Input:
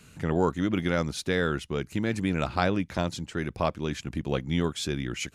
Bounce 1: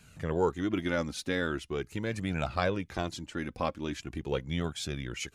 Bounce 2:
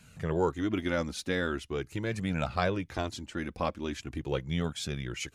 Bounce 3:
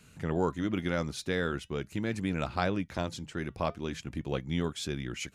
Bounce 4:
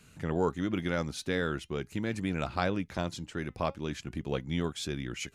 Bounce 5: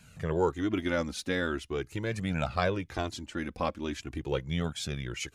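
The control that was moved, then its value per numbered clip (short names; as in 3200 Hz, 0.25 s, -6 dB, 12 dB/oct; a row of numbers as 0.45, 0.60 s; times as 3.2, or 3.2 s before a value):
flange, regen: +33, -26, -89, +88, -3%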